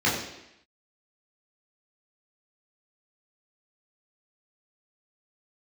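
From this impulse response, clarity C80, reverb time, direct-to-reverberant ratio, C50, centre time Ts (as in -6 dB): 6.5 dB, 0.85 s, -7.5 dB, 4.5 dB, 48 ms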